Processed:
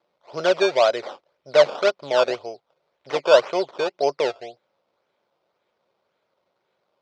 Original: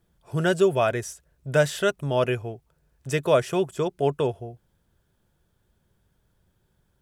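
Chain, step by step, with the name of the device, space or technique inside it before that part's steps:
circuit-bent sampling toy (sample-and-hold swept by an LFO 15×, swing 100% 1.9 Hz; loudspeaker in its box 530–4,900 Hz, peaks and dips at 560 Hz +7 dB, 1,700 Hz −8 dB, 2,800 Hz −4 dB)
level +4.5 dB

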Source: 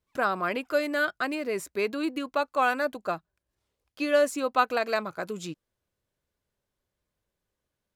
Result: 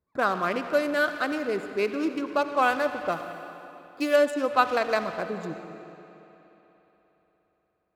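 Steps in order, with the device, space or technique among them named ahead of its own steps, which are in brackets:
adaptive Wiener filter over 15 samples
saturated reverb return (on a send at −7 dB: convolution reverb RT60 2.3 s, pre-delay 59 ms + soft clipping −28 dBFS, distortion −8 dB)
on the sum: high-pass filter 56 Hz
0:03.12–0:04.16: high-shelf EQ 7,700 Hz +12 dB
spring reverb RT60 4 s, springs 59 ms, chirp 60 ms, DRR 13.5 dB
level +2 dB

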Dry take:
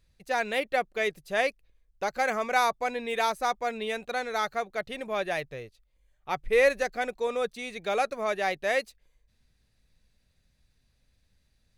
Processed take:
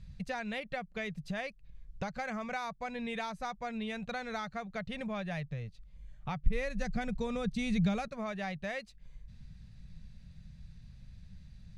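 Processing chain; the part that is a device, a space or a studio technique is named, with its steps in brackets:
jukebox (low-pass filter 6,600 Hz 12 dB per octave; low shelf with overshoot 240 Hz +11 dB, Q 3; downward compressor 6 to 1, threshold −43 dBFS, peak gain reduction 23 dB)
0:06.46–0:08.08: bass and treble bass +14 dB, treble +5 dB
level +6.5 dB

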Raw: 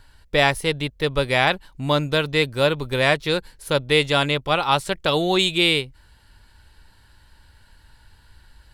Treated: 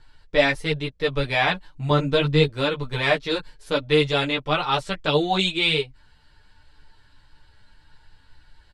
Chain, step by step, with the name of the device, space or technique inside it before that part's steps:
comb filter 6.7 ms, depth 48%
0:01.90–0:02.48: low-shelf EQ 260 Hz +9 dB
string-machine ensemble chorus (string-ensemble chorus; low-pass filter 6,200 Hz 12 dB per octave)

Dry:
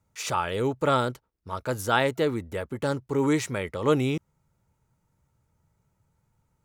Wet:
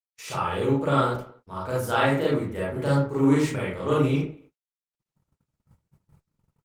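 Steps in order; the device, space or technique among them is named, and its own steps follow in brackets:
speakerphone in a meeting room (convolution reverb RT60 0.45 s, pre-delay 32 ms, DRR −6.5 dB; far-end echo of a speakerphone 230 ms, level −27 dB; automatic gain control gain up to 16 dB; noise gate −41 dBFS, range −59 dB; level −8.5 dB; Opus 24 kbit/s 48,000 Hz)

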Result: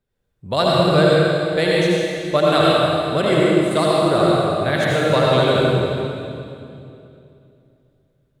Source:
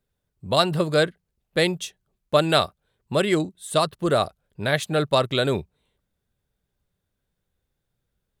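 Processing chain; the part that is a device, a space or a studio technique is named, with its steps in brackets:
swimming-pool hall (convolution reverb RT60 2.7 s, pre-delay 68 ms, DRR −6 dB; high-shelf EQ 4,600 Hz −7.5 dB)

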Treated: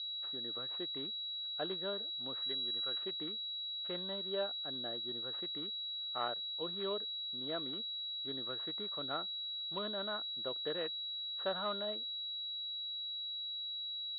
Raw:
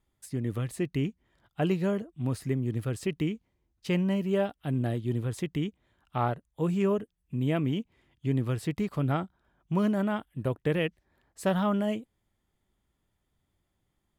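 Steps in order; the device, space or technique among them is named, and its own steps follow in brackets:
toy sound module (linearly interpolated sample-rate reduction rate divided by 4×; switching amplifier with a slow clock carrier 3,900 Hz; loudspeaker in its box 550–4,300 Hz, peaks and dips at 870 Hz −7 dB, 1,400 Hz +3 dB, 2,300 Hz −8 dB, 3,600 Hz +7 dB)
0:02.42–0:02.98: tilt shelving filter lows −4.5 dB, about 830 Hz
level −5 dB

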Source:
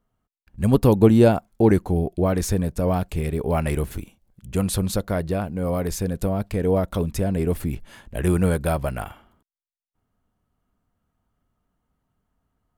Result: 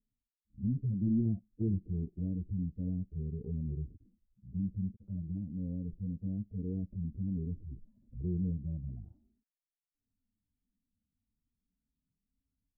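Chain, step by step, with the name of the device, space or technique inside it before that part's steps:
harmonic-percussive split with one part muted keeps harmonic
overdriven synthesiser ladder filter (soft clipping −15 dBFS, distortion −13 dB; transistor ladder low-pass 350 Hz, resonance 30%)
treble cut that deepens with the level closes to 450 Hz, closed at −29.5 dBFS
0:01.25–0:01.78: dynamic equaliser 110 Hz, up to +4 dB, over −43 dBFS, Q 2.3
level −4.5 dB

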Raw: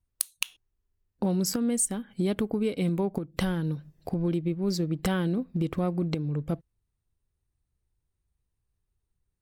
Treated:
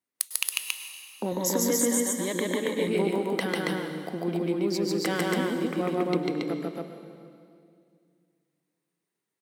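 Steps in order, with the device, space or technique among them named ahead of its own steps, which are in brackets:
stadium PA (high-pass filter 230 Hz 24 dB per octave; parametric band 2,000 Hz +6 dB 0.41 octaves; loudspeakers that aren't time-aligned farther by 50 metres −1 dB, 95 metres −2 dB; convolution reverb RT60 2.2 s, pre-delay 96 ms, DRR 7.5 dB)
0:01.31–0:02.88: EQ curve with evenly spaced ripples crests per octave 1.1, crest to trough 12 dB

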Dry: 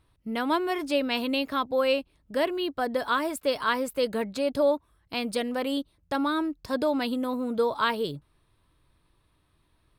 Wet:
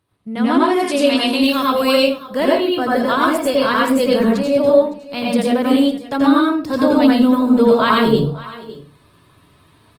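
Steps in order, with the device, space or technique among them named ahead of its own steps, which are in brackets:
0:00.73–0:01.98: bass and treble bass −6 dB, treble +11 dB
single-tap delay 559 ms −18.5 dB
dynamic equaliser 150 Hz, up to +8 dB, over −46 dBFS, Q 0.86
far-field microphone of a smart speaker (convolution reverb RT60 0.40 s, pre-delay 82 ms, DRR −3.5 dB; high-pass filter 87 Hz 24 dB per octave; automatic gain control gain up to 14.5 dB; level −1 dB; Opus 20 kbit/s 48,000 Hz)

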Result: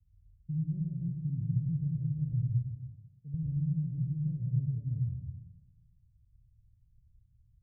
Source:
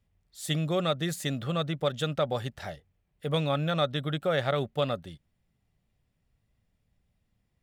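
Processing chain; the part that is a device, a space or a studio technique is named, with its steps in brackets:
0:02.49–0:03.34: high-pass filter 350 Hz 6 dB per octave
club heard from the street (brickwall limiter −19 dBFS, peak gain reduction 5.5 dB; low-pass filter 120 Hz 24 dB per octave; convolution reverb RT60 1.2 s, pre-delay 85 ms, DRR −1 dB)
level +7 dB

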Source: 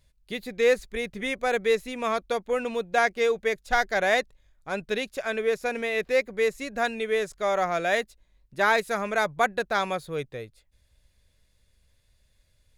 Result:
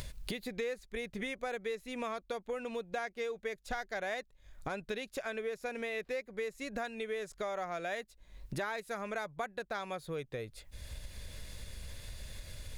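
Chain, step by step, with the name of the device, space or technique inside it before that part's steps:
upward and downward compression (upward compression, threshold −28 dBFS; downward compressor 6 to 1, threshold −37 dBFS, peak gain reduction 19 dB)
level +1 dB

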